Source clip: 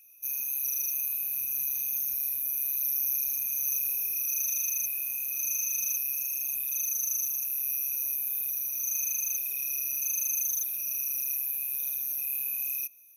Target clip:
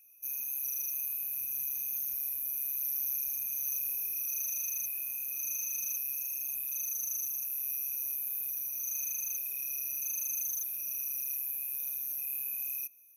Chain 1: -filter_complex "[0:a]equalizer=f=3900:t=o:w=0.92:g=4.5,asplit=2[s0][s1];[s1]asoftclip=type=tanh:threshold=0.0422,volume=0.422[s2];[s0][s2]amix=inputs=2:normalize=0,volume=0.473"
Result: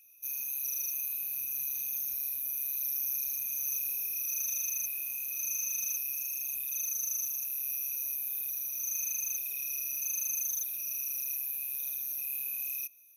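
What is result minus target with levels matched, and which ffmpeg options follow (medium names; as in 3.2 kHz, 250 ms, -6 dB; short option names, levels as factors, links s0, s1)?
4 kHz band +4.5 dB
-filter_complex "[0:a]equalizer=f=3900:t=o:w=0.92:g=-6.5,asplit=2[s0][s1];[s1]asoftclip=type=tanh:threshold=0.0422,volume=0.422[s2];[s0][s2]amix=inputs=2:normalize=0,volume=0.473"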